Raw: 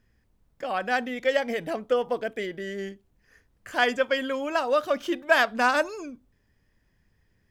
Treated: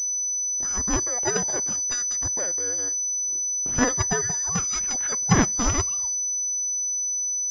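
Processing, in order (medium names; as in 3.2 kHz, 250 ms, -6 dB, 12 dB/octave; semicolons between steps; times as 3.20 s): four frequency bands reordered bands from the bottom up 2341; class-D stage that switches slowly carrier 6 kHz; trim +4.5 dB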